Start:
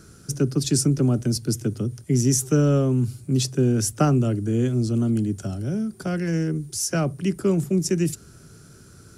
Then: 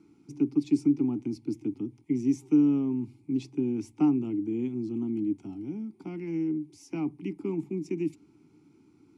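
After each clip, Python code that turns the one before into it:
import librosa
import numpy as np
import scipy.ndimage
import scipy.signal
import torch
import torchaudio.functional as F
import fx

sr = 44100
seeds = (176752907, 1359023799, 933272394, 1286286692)

y = fx.vowel_filter(x, sr, vowel='u')
y = y * 10.0 ** (3.5 / 20.0)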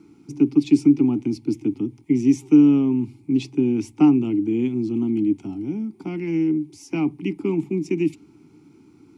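y = fx.dynamic_eq(x, sr, hz=2900.0, q=1.3, threshold_db=-57.0, ratio=4.0, max_db=6)
y = y * 10.0 ** (8.5 / 20.0)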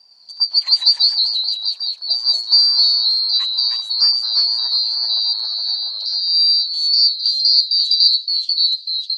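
y = fx.band_shuffle(x, sr, order='2341')
y = fx.filter_sweep_highpass(y, sr, from_hz=190.0, to_hz=3700.0, start_s=4.4, end_s=6.21, q=4.0)
y = fx.echo_pitch(y, sr, ms=109, semitones=-1, count=3, db_per_echo=-3.0)
y = y * 10.0 ** (-1.0 / 20.0)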